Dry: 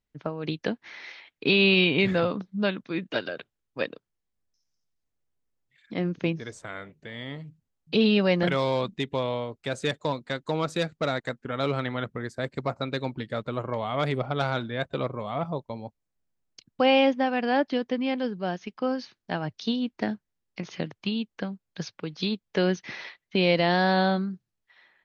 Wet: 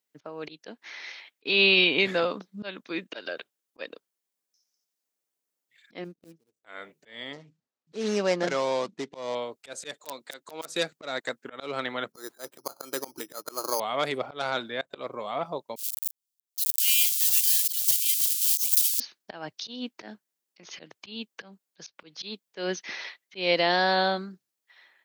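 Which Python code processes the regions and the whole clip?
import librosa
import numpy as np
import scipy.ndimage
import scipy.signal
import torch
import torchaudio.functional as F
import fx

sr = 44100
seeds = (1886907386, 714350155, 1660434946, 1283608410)

y = fx.chain(x, sr, fx.median_filter(points=41),
    fx.peak_eq(hz=1200.0, db=-12.5, octaves=2.8),
    fx.upward_expand(threshold_db=-44.0, expansion=2.5), at=(6.04, 6.65))
y = fx.chain(y, sr, fx.median_filter(points=15),
    fx.lowpass(hz=6800.0, slope=24), at=(7.33, 9.35))
y = fx.chain(y, sr, fx.highpass(hz=280.0, slope=6),
    fx.overflow_wrap(gain_db=17.0), at=(9.94, 10.69))
y = fx.chain(y, sr, fx.cabinet(low_hz=110.0, low_slope=12, high_hz=3100.0, hz=(110.0, 220.0, 330.0, 880.0, 1300.0, 2000.0), db=(-9, -7, 7, 5, 7, -9)),
    fx.resample_bad(factor=8, down='none', up='hold'), at=(12.12, 13.8))
y = fx.chain(y, sr, fx.crossing_spikes(level_db=-17.5),
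    fx.cheby2_highpass(hz=850.0, order=4, stop_db=60), at=(15.76, 19.0))
y = scipy.signal.sosfilt(scipy.signal.butter(2, 330.0, 'highpass', fs=sr, output='sos'), y)
y = fx.high_shelf(y, sr, hz=5400.0, db=12.0)
y = fx.auto_swell(y, sr, attack_ms=172.0)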